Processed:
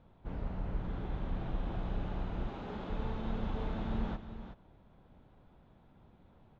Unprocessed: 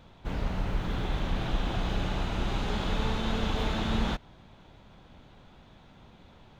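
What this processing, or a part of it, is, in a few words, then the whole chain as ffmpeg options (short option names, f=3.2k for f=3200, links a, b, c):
through cloth: -filter_complex "[0:a]lowpass=6.4k,highshelf=f=2.2k:g=-17,asettb=1/sr,asplit=3[a][b][c];[a]atrim=end=2.484[d];[b]atrim=start=2.48:end=2.9,asetpts=PTS-STARTPTS,afade=t=in:d=0.004:c=qsin,afade=t=out:st=0.416:d=0.004:c=qsin,highpass=180[e];[c]atrim=start=2.896[f];[d][e]acrossfade=d=0.004:c1=hsin:c2=qsin[g];[g][f]acrossfade=d=0.004:c1=qsin:c2=hsin,aecho=1:1:374:0.299,volume=-7dB"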